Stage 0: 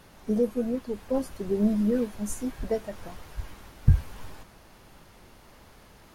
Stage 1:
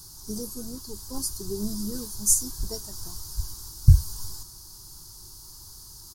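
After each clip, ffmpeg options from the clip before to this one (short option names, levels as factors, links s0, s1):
-af "firequalizer=gain_entry='entry(120,0);entry(230,-16);entry(350,-6);entry(540,-26);entry(930,-7);entry(1500,-14);entry(2200,-27);entry(4700,13)':delay=0.05:min_phase=1,volume=1.78"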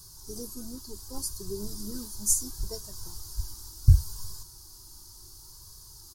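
-af "flanger=delay=1.8:depth=1.5:regen=-34:speed=0.7:shape=sinusoidal"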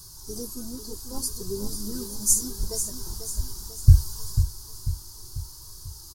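-af "aecho=1:1:493|986|1479|1972|2465|2958:0.355|0.177|0.0887|0.0444|0.0222|0.0111,volume=1.58"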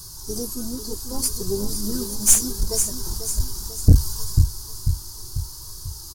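-af "aeval=exprs='(tanh(5.01*val(0)+0.45)-tanh(0.45))/5.01':c=same,volume=2.51"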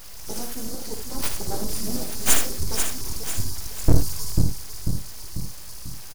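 -af "aeval=exprs='abs(val(0))':c=same,aecho=1:1:58|79:0.355|0.316,volume=0.841"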